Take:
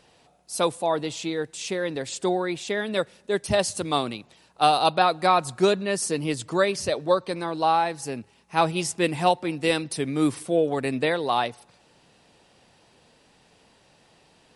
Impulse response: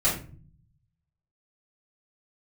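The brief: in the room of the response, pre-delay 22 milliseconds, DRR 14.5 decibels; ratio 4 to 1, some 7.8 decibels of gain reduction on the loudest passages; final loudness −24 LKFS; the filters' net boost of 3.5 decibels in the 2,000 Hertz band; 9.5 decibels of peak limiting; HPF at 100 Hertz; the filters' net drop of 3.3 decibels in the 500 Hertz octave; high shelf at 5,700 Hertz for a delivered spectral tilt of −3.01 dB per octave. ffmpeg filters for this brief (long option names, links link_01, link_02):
-filter_complex "[0:a]highpass=100,equalizer=frequency=500:width_type=o:gain=-4.5,equalizer=frequency=2000:width_type=o:gain=3.5,highshelf=frequency=5700:gain=9,acompressor=threshold=-24dB:ratio=4,alimiter=limit=-19.5dB:level=0:latency=1,asplit=2[link_01][link_02];[1:a]atrim=start_sample=2205,adelay=22[link_03];[link_02][link_03]afir=irnorm=-1:irlink=0,volume=-26.5dB[link_04];[link_01][link_04]amix=inputs=2:normalize=0,volume=7dB"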